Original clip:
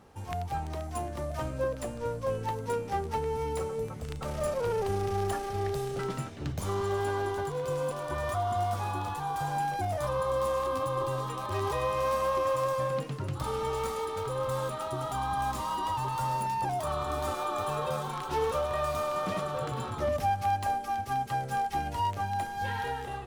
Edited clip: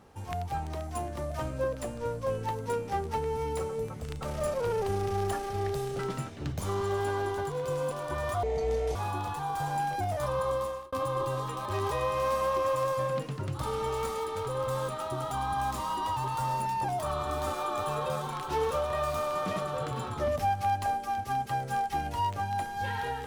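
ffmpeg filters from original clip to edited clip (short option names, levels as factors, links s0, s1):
-filter_complex "[0:a]asplit=4[s0][s1][s2][s3];[s0]atrim=end=8.434[s4];[s1]atrim=start=8.43:end=8.76,asetpts=PTS-STARTPTS,asetrate=27783,aresample=44100[s5];[s2]atrim=start=8.756:end=10.73,asetpts=PTS-STARTPTS,afade=t=out:st=1.554:d=0.42[s6];[s3]atrim=start=10.73,asetpts=PTS-STARTPTS,afade=t=in:d=0.004:c=hsin[s7];[s4][s5]acrossfade=d=0.004:c1=hsin:c2=hsin[s8];[s6][s7]concat=n=2:v=0:a=1[s9];[s8][s9]acrossfade=d=0.004:c1=hsin:c2=hsin"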